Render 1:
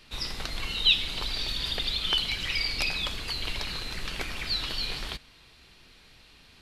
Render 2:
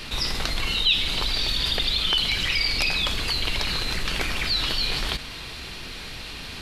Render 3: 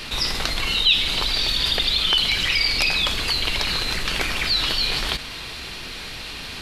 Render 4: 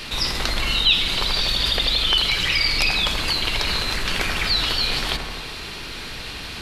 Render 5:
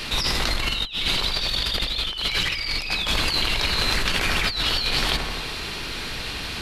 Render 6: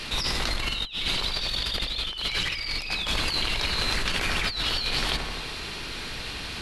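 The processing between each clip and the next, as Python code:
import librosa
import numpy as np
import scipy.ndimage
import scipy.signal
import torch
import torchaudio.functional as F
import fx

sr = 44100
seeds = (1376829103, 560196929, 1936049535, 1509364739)

y1 = fx.env_flatten(x, sr, amount_pct=50)
y2 = fx.low_shelf(y1, sr, hz=280.0, db=-4.0)
y2 = F.gain(torch.from_numpy(y2), 3.5).numpy()
y3 = fx.echo_bbd(y2, sr, ms=84, stages=1024, feedback_pct=73, wet_db=-6)
y4 = fx.over_compress(y3, sr, threshold_db=-23.0, ratio=-0.5)
y5 = fx.brickwall_lowpass(y4, sr, high_hz=12000.0)
y5 = F.gain(torch.from_numpy(y5), -4.0).numpy()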